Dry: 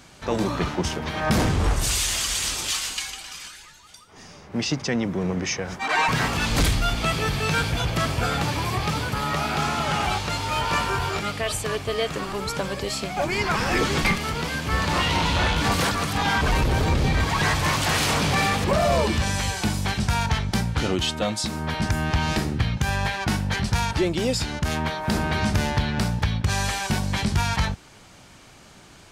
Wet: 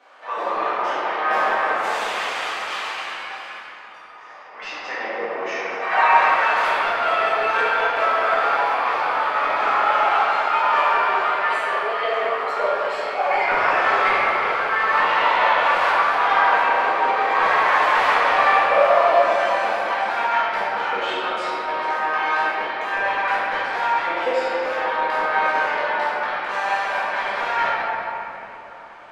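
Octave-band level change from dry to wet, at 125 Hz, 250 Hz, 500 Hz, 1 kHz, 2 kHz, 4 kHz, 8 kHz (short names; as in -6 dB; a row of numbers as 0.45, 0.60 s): under -25 dB, -13.0 dB, +5.5 dB, +9.5 dB, +6.5 dB, -4.5 dB, under -15 dB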